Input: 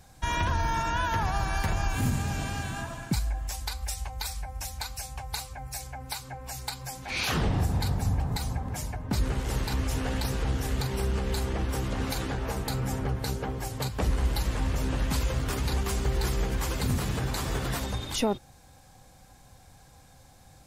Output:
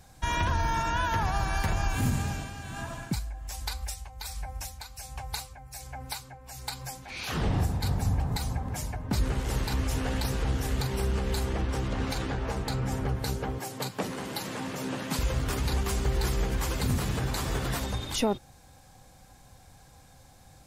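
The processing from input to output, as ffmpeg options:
-filter_complex "[0:a]asettb=1/sr,asplit=3[a][b][c];[a]atrim=end=2.184[d];[b]atrim=start=2.18:end=7.83,asetpts=PTS-STARTPTS,afade=t=in:d=0.004:c=qsin,afade=t=out:st=5.646:d=0.004:c=qsin,tremolo=f=1.3:d=0.6[e];[c]atrim=start=7.826[f];[d][e]acrossfade=d=0.004:c1=hsin:c2=qsin[g];[g][f]acrossfade=d=0.004:c1=qsin:c2=hsin,asettb=1/sr,asplit=3[h][i][j];[h]atrim=end=11.614[k];[i]atrim=start=11.61:end=12.92,asetpts=PTS-STARTPTS,afade=t=in:d=0.004:c=qsin,afade=t=out:st=1.306:d=0.004:c=qsin,adynamicsmooth=sensitivity=7.5:basefreq=7.2k[l];[j]atrim=start=12.916[m];[k][l]acrossfade=d=0.004:c1=hsin:c2=qsin[n];[n][m]acrossfade=d=0.004:c1=qsin:c2=hsin,asettb=1/sr,asplit=3[o][p][q];[o]atrim=end=13.584[r];[p]atrim=start=13.58:end=15.19,asetpts=PTS-STARTPTS,afade=t=in:d=0.004:c=qsin,afade=t=out:st=1.606:d=0.004:c=qsin,highpass=f=150:w=0.5412,highpass=f=150:w=1.3066[s];[q]atrim=start=15.186[t];[r][s]acrossfade=d=0.004:c1=hsin:c2=qsin[u];[u][t]acrossfade=d=0.004:c1=qsin:c2=hsin"

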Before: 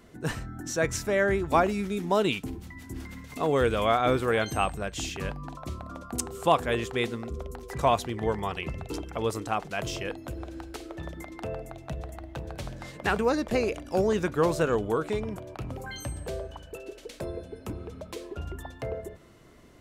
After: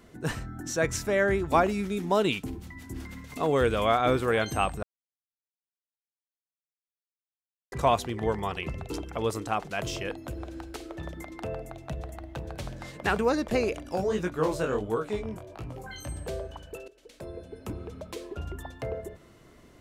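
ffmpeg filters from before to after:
-filter_complex "[0:a]asplit=3[a][b][c];[a]afade=t=out:st=13.94:d=0.02[d];[b]flanger=delay=17:depth=6:speed=1.4,afade=t=in:st=13.94:d=0.02,afade=t=out:st=16.08:d=0.02[e];[c]afade=t=in:st=16.08:d=0.02[f];[d][e][f]amix=inputs=3:normalize=0,asplit=4[g][h][i][j];[g]atrim=end=4.83,asetpts=PTS-STARTPTS,afade=t=out:st=4.826:d=0.004:c=hsin[k];[h]atrim=start=4.83:end=7.72,asetpts=PTS-STARTPTS,volume=0[l];[i]atrim=start=7.72:end=16.88,asetpts=PTS-STARTPTS,afade=t=in:d=0.004:c=hsin,afade=t=out:st=9.156:d=0.004:c=hsin:silence=0.133352[m];[j]atrim=start=16.88,asetpts=PTS-STARTPTS,afade=t=in:d=0.84:silence=0.133352[n];[k][l][m][n]concat=n=4:v=0:a=1"

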